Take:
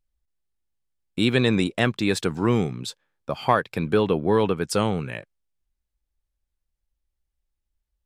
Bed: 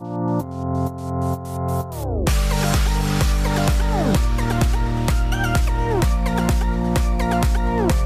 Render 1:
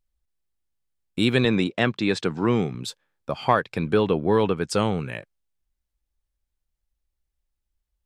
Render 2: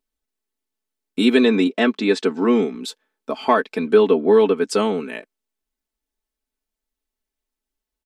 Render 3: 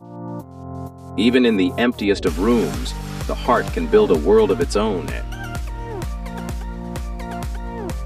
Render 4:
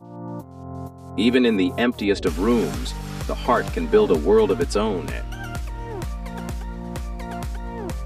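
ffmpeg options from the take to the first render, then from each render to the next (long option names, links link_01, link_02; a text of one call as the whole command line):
ffmpeg -i in.wav -filter_complex "[0:a]asettb=1/sr,asplit=3[link_01][link_02][link_03];[link_01]atrim=end=1.454[link_04];[link_02]atrim=start=1.45:end=2.75,asetpts=PTS-STARTPTS,afade=type=in:duration=0.004:curve=qsin,afade=type=out:start_time=1.296:duration=0.004:curve=qsin,highpass=110,lowpass=5400[link_05];[link_03]atrim=start=2.746[link_06];[link_04][link_05]acrossfade=duration=0.004:curve1=hsin:curve2=qsin[link_07];[link_07][link_06]acrossfade=duration=0.004:curve1=qsin:curve2=hsin,asettb=1/sr,asplit=3[link_08][link_09][link_10];[link_08]atrim=end=3.314[link_11];[link_09]atrim=start=3.31:end=5,asetpts=PTS-STARTPTS,afade=type=in:duration=0.004:curve=qsin,afade=type=out:start_time=1.686:duration=0.004:curve=qsin,lowpass=8400[link_12];[link_10]atrim=start=4.996[link_13];[link_11][link_12]acrossfade=duration=0.004:curve1=hsin:curve2=qsin[link_14];[link_14][link_13]acrossfade=duration=0.004:curve1=qsin:curve2=hsin" out.wav
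ffmpeg -i in.wav -af "lowshelf=frequency=190:width_type=q:width=3:gain=-13.5,aecho=1:1:4.6:0.82" out.wav
ffmpeg -i in.wav -i bed.wav -filter_complex "[1:a]volume=-9dB[link_01];[0:a][link_01]amix=inputs=2:normalize=0" out.wav
ffmpeg -i in.wav -af "volume=-2.5dB" out.wav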